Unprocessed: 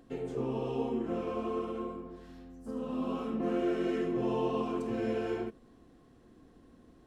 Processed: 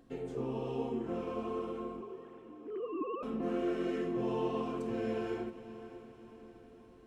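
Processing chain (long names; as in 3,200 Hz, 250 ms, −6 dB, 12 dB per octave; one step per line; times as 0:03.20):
0:02.01–0:03.23: three sine waves on the formant tracks
feedback delay with all-pass diffusion 584 ms, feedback 53%, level −14 dB
level −3 dB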